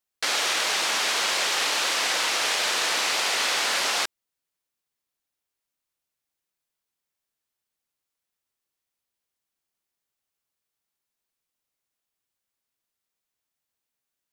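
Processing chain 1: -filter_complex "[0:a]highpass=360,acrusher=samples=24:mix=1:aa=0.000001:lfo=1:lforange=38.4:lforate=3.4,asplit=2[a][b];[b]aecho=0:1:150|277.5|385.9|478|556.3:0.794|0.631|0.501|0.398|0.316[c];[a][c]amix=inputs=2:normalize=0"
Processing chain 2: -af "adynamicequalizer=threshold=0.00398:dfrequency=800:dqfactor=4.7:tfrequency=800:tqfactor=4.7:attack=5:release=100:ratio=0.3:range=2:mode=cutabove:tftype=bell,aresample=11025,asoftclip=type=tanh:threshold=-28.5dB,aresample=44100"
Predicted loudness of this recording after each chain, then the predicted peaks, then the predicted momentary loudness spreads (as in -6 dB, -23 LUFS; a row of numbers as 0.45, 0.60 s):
-21.0, -29.5 LUFS; -8.0, -23.0 dBFS; 6, 2 LU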